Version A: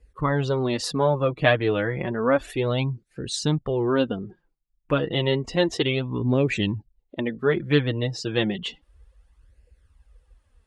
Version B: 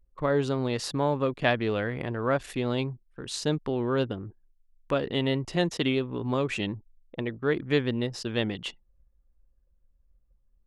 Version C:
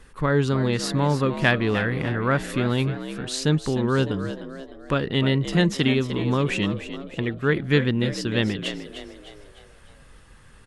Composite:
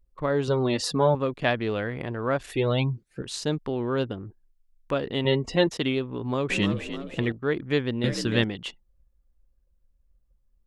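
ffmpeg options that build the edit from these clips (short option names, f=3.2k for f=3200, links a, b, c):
-filter_complex "[0:a]asplit=3[a][b][c];[2:a]asplit=2[d][e];[1:a]asplit=6[f][g][h][i][j][k];[f]atrim=end=0.482[l];[a]atrim=start=0.478:end=1.152[m];[g]atrim=start=1.148:end=2.522[n];[b]atrim=start=2.518:end=3.222[o];[h]atrim=start=3.218:end=5.252[p];[c]atrim=start=5.248:end=5.672[q];[i]atrim=start=5.668:end=6.502[r];[d]atrim=start=6.498:end=7.322[s];[j]atrim=start=7.318:end=8.042[t];[e]atrim=start=8.038:end=8.442[u];[k]atrim=start=8.438[v];[l][m]acrossfade=d=0.004:c1=hsin:c2=hsin[w];[w][n]acrossfade=d=0.004:c1=hsin:c2=hsin[x];[x][o]acrossfade=d=0.004:c1=hsin:c2=hsin[y];[y][p]acrossfade=d=0.004:c1=hsin:c2=hsin[z];[z][q]acrossfade=d=0.004:c1=hsin:c2=hsin[aa];[aa][r]acrossfade=d=0.004:c1=hsin:c2=hsin[ab];[ab][s]acrossfade=d=0.004:c1=hsin:c2=hsin[ac];[ac][t]acrossfade=d=0.004:c1=hsin:c2=hsin[ad];[ad][u]acrossfade=d=0.004:c1=hsin:c2=hsin[ae];[ae][v]acrossfade=d=0.004:c1=hsin:c2=hsin"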